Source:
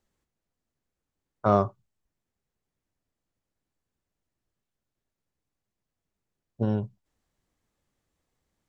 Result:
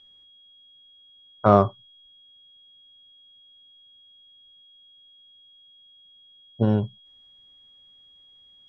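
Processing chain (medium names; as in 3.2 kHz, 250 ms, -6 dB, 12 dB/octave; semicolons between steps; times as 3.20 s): whistle 3.3 kHz -56 dBFS; low-pass 4.6 kHz; trim +5.5 dB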